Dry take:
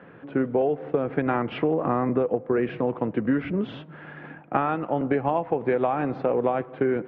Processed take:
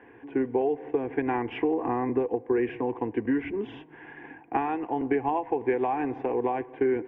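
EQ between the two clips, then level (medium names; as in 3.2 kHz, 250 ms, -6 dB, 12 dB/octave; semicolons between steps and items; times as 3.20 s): static phaser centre 870 Hz, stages 8; 0.0 dB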